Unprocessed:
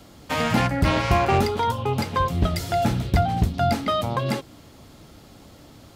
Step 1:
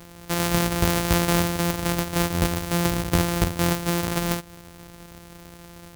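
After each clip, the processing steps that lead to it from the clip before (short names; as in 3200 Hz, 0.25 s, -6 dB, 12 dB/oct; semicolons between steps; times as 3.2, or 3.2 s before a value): sample sorter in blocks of 256 samples; high shelf 6700 Hz +8 dB; in parallel at +1 dB: compressor, threshold -29 dBFS, peak gain reduction 14.5 dB; on the sum: gain -4 dB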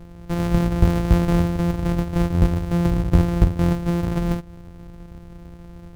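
tilt -3.5 dB/oct; gain -4 dB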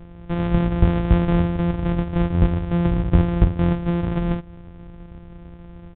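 downsampling 8000 Hz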